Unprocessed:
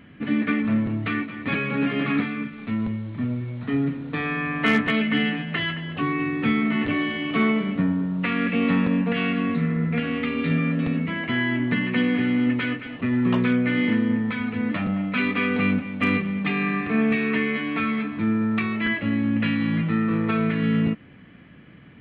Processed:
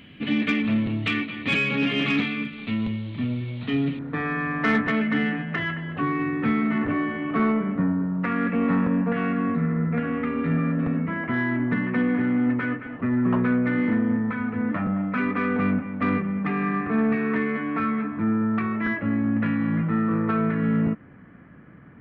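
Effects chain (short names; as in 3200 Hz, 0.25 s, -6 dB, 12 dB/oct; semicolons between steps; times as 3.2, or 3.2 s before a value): resonant high shelf 2200 Hz +8 dB, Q 1.5, from 3.99 s -7.5 dB, from 6.78 s -14 dB; soft clip -12.5 dBFS, distortion -24 dB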